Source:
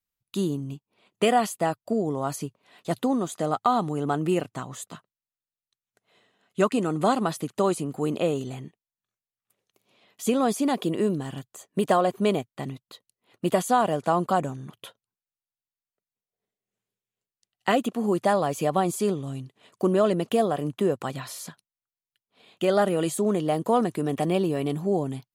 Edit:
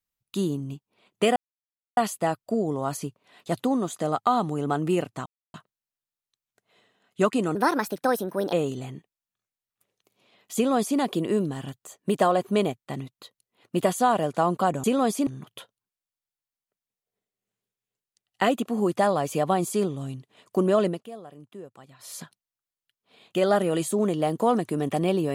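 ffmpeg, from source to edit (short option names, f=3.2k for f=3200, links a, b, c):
-filter_complex "[0:a]asplit=10[a][b][c][d][e][f][g][h][i][j];[a]atrim=end=1.36,asetpts=PTS-STARTPTS,afade=t=out:st=1.356:d=0.004:c=hsin,apad=pad_dur=0.61[k];[b]atrim=start=1.36:end=4.65,asetpts=PTS-STARTPTS,afade=t=in:d=0.004:c=hsin,afade=t=out:st=3.286:d=0.004:c=hsin[l];[c]atrim=start=4.65:end=4.93,asetpts=PTS-STARTPTS,volume=0[m];[d]atrim=start=4.93:end=6.944,asetpts=PTS-STARTPTS,afade=t=in:d=0.004:c=hsin[n];[e]atrim=start=6.94:end=8.22,asetpts=PTS-STARTPTS,asetrate=57771,aresample=44100,atrim=end_sample=43090,asetpts=PTS-STARTPTS[o];[f]atrim=start=8.216:end=14.532[p];[g]atrim=start=10.248:end=10.682[q];[h]atrim=start=14.528:end=20.28,asetpts=PTS-STARTPTS,afade=t=out:st=5.602:d=0.15:silence=0.125893[r];[i]atrim=start=20.28:end=21.25,asetpts=PTS-STARTPTS,volume=-18dB[s];[j]atrim=start=21.25,asetpts=PTS-STARTPTS,afade=t=in:d=0.15:silence=0.125893[t];[k][l][m][n]concat=n=4:v=0:a=1[u];[u][o]acrossfade=d=0.004:c1=hsin:c2=hsin[v];[v][p]acrossfade=d=0.004:c1=hsin:c2=hsin[w];[w][q]acrossfade=d=0.004:c1=hsin:c2=hsin[x];[r][s][t]concat=n=3:v=0:a=1[y];[x][y]acrossfade=d=0.004:c1=hsin:c2=hsin"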